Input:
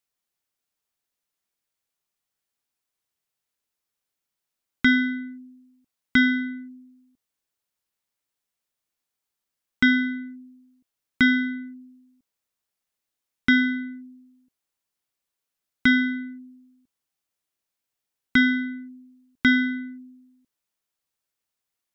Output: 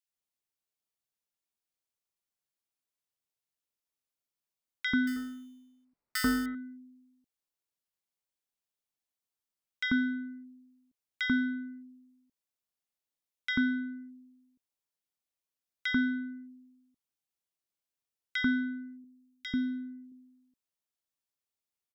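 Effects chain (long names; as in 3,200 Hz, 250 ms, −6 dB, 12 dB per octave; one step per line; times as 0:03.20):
0:05.07–0:06.46: sample-rate reduction 3,300 Hz, jitter 0%
0:18.95–0:20.03: parametric band 1,200 Hz −15 dB 2 octaves
multiband delay without the direct sound highs, lows 90 ms, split 1,600 Hz
level −8 dB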